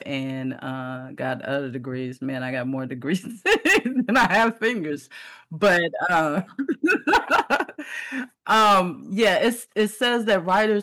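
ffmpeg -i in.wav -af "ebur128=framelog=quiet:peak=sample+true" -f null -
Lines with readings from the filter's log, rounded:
Integrated loudness:
  I:         -22.1 LUFS
  Threshold: -32.4 LUFS
Loudness range:
  LRA:         5.1 LU
  Threshold: -42.1 LUFS
  LRA low:   -26.0 LUFS
  LRA high:  -21.0 LUFS
Sample peak:
  Peak:      -12.4 dBFS
True peak:
  Peak:      -11.8 dBFS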